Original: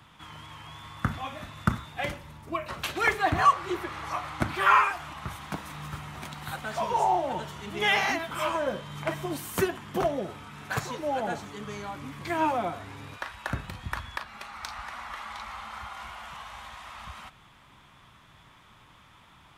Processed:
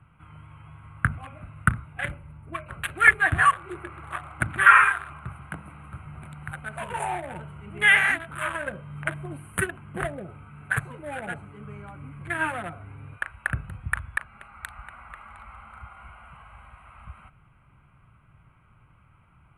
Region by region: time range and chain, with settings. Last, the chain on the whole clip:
3.57–6.06 s: high-pass 70 Hz + hum notches 50/100/150/200/250 Hz + echo whose repeats swap between lows and highs 137 ms, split 1.2 kHz, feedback 55%, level -11 dB
whole clip: local Wiener filter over 25 samples; FFT filter 140 Hz 0 dB, 240 Hz -10 dB, 990 Hz -9 dB, 1.6 kHz +10 dB, 3.6 kHz -6 dB, 5.3 kHz -27 dB, 9.7 kHz +15 dB, 14 kHz -12 dB; trim +4 dB

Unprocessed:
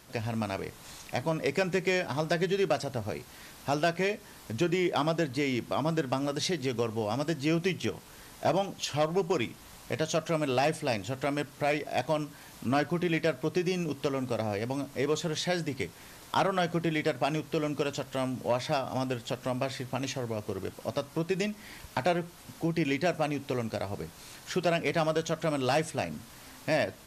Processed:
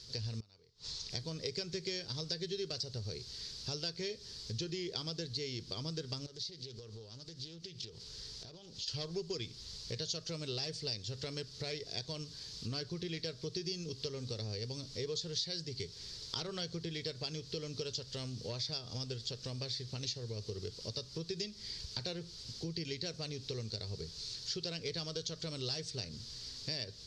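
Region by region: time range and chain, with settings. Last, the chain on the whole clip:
0.40–1.10 s: peaking EQ 940 Hz +5.5 dB 0.82 oct + inverted gate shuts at -30 dBFS, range -27 dB + low-pass 7.7 kHz
6.26–8.88 s: compression 20:1, threshold -41 dBFS + loudspeaker Doppler distortion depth 0.31 ms
whole clip: FFT filter 110 Hz 0 dB, 290 Hz -15 dB, 430 Hz -3 dB, 670 Hz -21 dB, 2.6 kHz -10 dB, 4.7 kHz +13 dB, 12 kHz -25 dB; compression 2.5:1, threshold -41 dBFS; trim +2 dB

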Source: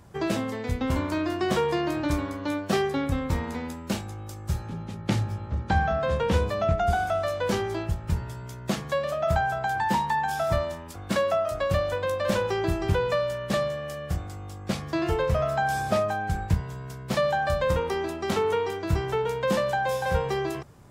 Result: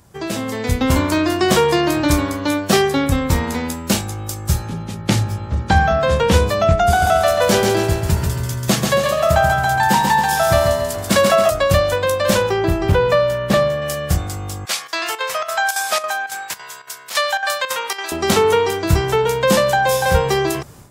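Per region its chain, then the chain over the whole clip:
6.88–11.50 s: high-pass 59 Hz + feedback delay 138 ms, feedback 45%, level -4.5 dB
12.49–13.82 s: peaking EQ 9 kHz -10.5 dB 2.4 oct + hard clipper -16.5 dBFS
14.65–18.12 s: high-pass 1.1 kHz + square tremolo 3.6 Hz, depth 65%, duty 80%
whole clip: treble shelf 4.3 kHz +10.5 dB; level rider gain up to 11.5 dB

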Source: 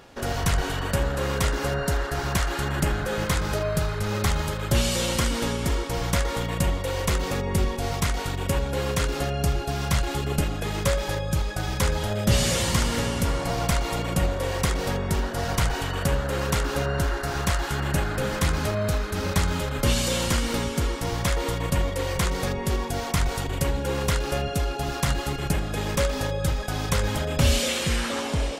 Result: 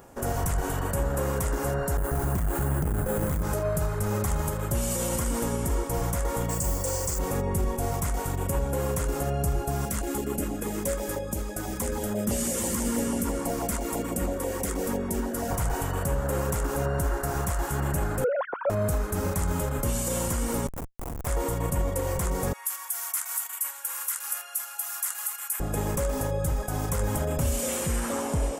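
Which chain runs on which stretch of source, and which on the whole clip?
1.97–3.43 s: bass shelf 400 Hz +7 dB + careless resampling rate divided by 4×, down filtered, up hold + transformer saturation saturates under 190 Hz
6.49–7.19 s: high-order bell 5.8 kHz +13 dB 1.3 oct + band-stop 3.9 kHz, Q 5.8 + modulation noise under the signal 18 dB
9.85–15.51 s: resonant low shelf 180 Hz -6.5 dB, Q 3 + LFO notch saw down 6.1 Hz 540–1500 Hz
18.24–18.70 s: formants replaced by sine waves + peaking EQ 2.9 kHz -12.5 dB 1.6 oct
20.67–21.27 s: high-pass 570 Hz 24 dB/octave + Schmitt trigger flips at -26 dBFS
22.53–25.60 s: high-pass 1.2 kHz 24 dB/octave + peaking EQ 12 kHz +12.5 dB 0.97 oct
whole clip: treble shelf 10 kHz +9.5 dB; peak limiter -17 dBFS; FFT filter 970 Hz 0 dB, 4.1 kHz -15 dB, 7.7 kHz +1 dB

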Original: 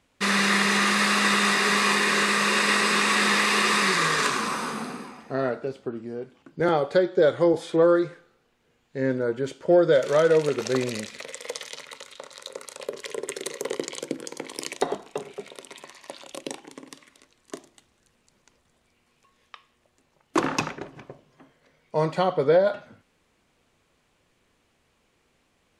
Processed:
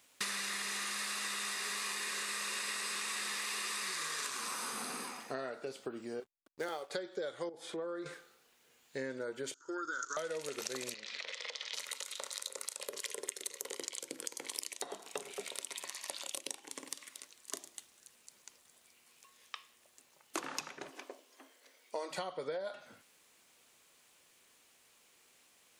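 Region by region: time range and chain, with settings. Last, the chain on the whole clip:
6.20–6.90 s: tone controls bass -9 dB, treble +4 dB + hysteresis with a dead band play -39 dBFS + upward expansion, over -37 dBFS
7.49–8.06 s: treble shelf 2.8 kHz -12 dB + compression 2:1, threshold -36 dBFS
9.54–10.17 s: FFT filter 110 Hz 0 dB, 190 Hz -28 dB, 300 Hz +4 dB, 630 Hz -27 dB, 970 Hz 0 dB, 1.4 kHz +14 dB, 2.2 kHz -21 dB, 4.6 kHz -5 dB, 6.7 kHz +10 dB, 9.9 kHz -26 dB + level held to a coarse grid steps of 10 dB + upward expansion, over -48 dBFS
10.94–11.74 s: bass shelf 350 Hz -8.5 dB + compression 10:1, threshold -36 dBFS + low-pass 4.7 kHz 24 dB/octave
20.91–22.11 s: brick-wall FIR high-pass 230 Hz + peaking EQ 1.4 kHz -2.5 dB 1.6 oct
whole clip: RIAA curve recording; compression 12:1, threshold -34 dBFS; trim -2 dB

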